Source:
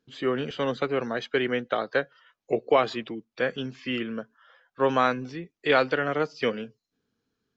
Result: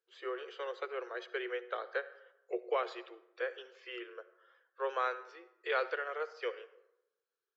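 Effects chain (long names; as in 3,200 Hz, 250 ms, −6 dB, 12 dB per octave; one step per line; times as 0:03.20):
Chebyshev high-pass with heavy ripple 350 Hz, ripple 6 dB
convolution reverb RT60 0.90 s, pre-delay 52 ms, DRR 15 dB
level −9 dB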